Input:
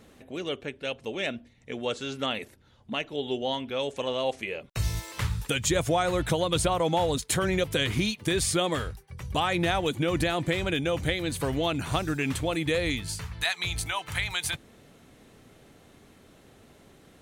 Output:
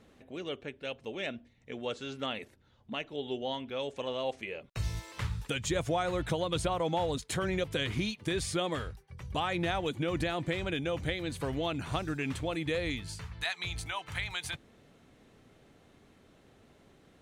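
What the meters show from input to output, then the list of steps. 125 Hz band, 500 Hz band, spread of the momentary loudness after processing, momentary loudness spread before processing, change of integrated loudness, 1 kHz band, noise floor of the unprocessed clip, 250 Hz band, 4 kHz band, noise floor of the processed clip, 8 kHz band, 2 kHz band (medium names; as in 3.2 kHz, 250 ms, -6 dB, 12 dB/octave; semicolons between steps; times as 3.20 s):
-5.5 dB, -5.5 dB, 9 LU, 9 LU, -6.0 dB, -5.5 dB, -57 dBFS, -5.5 dB, -7.0 dB, -63 dBFS, -10.5 dB, -6.0 dB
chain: treble shelf 9.1 kHz -12 dB; trim -5.5 dB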